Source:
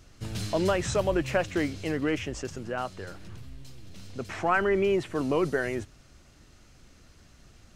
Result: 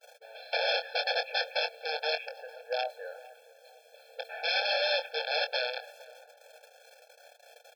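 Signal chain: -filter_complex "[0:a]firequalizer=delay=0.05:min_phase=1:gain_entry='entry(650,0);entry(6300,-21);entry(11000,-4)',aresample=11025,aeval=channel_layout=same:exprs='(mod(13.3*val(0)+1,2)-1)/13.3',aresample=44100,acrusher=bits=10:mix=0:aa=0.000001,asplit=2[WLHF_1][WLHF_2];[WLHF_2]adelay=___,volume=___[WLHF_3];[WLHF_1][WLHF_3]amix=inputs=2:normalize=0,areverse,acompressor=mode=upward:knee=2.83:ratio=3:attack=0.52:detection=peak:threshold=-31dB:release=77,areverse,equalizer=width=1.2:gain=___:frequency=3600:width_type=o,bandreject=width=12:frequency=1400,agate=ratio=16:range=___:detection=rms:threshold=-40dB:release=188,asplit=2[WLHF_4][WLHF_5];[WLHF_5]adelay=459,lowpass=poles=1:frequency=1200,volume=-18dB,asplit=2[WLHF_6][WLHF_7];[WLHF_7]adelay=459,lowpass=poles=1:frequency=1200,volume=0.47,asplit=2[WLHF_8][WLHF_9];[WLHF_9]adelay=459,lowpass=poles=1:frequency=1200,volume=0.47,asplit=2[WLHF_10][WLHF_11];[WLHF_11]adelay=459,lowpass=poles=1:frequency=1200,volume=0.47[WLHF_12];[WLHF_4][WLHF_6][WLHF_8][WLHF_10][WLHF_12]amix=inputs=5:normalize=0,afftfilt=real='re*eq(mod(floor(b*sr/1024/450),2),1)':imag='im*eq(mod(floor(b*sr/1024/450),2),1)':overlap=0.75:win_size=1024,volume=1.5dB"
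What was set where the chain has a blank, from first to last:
24, -8dB, 3, -33dB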